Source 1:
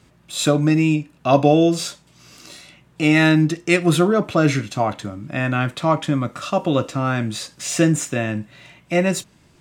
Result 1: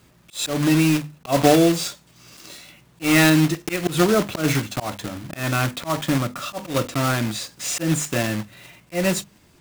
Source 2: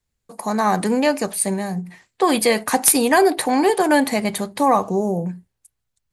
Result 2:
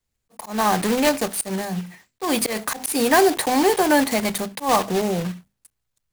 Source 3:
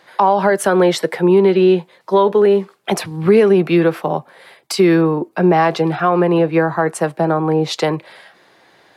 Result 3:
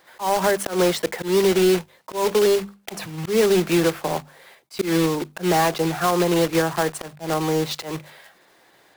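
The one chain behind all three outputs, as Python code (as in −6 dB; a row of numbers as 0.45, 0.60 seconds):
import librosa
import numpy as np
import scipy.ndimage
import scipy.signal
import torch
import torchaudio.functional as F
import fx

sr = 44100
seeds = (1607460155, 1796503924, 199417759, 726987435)

y = fx.block_float(x, sr, bits=3)
y = fx.hum_notches(y, sr, base_hz=50, count=5)
y = fx.auto_swell(y, sr, attack_ms=148.0)
y = y * 10.0 ** (-22 / 20.0) / np.sqrt(np.mean(np.square(y)))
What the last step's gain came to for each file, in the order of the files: −0.5, −1.0, −5.5 decibels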